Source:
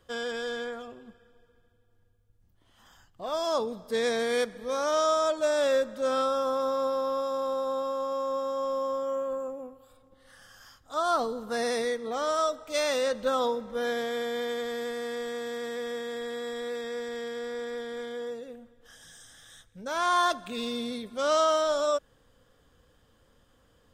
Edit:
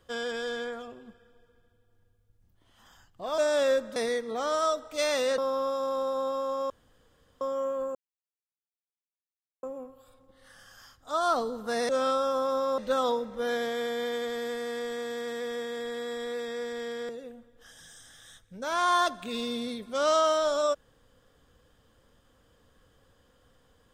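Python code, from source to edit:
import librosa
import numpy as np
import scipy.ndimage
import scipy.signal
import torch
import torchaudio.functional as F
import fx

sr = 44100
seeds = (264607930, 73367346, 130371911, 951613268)

y = fx.edit(x, sr, fx.cut(start_s=3.38, length_s=2.04),
    fx.swap(start_s=6.0, length_s=0.89, other_s=11.72, other_length_s=1.42),
    fx.room_tone_fill(start_s=8.21, length_s=0.71),
    fx.insert_silence(at_s=9.46, length_s=1.68),
    fx.cut(start_s=17.45, length_s=0.88), tone=tone)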